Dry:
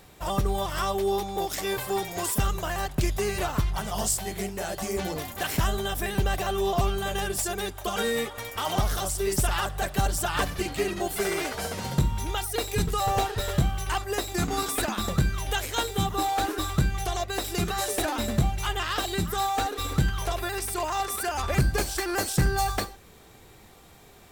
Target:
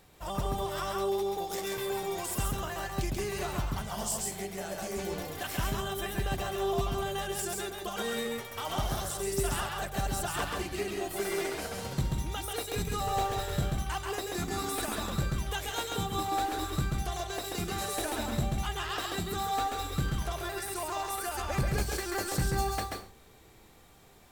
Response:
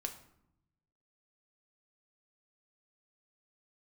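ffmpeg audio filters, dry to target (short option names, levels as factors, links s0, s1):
-filter_complex "[0:a]asplit=2[s0][s1];[1:a]atrim=start_sample=2205,atrim=end_sample=6174,adelay=135[s2];[s1][s2]afir=irnorm=-1:irlink=0,volume=0.891[s3];[s0][s3]amix=inputs=2:normalize=0,volume=0.422"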